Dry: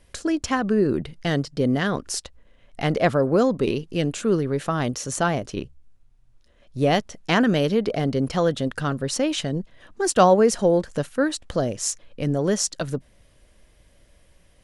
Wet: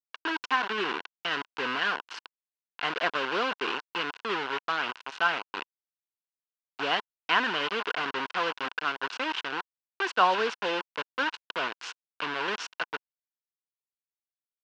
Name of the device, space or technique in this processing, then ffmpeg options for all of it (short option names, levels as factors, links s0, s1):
hand-held game console: -af "acrusher=bits=3:mix=0:aa=0.000001,highpass=450,equalizer=f=580:t=q:w=4:g=-8,equalizer=f=1000:t=q:w=4:g=9,equalizer=f=1500:t=q:w=4:g=10,equalizer=f=2800:t=q:w=4:g=9,lowpass=f=4500:w=0.5412,lowpass=f=4500:w=1.3066,volume=0.398"